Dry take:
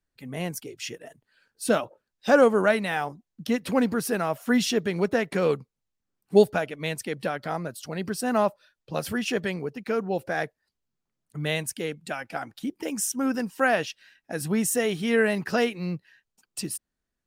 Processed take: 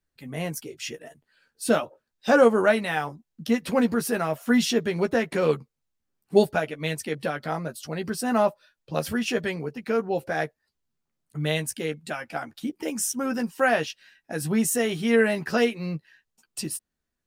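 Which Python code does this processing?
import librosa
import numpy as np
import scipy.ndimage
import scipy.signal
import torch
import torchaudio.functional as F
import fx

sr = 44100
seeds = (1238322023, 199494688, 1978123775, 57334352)

y = fx.doubler(x, sr, ms=13.0, db=-7)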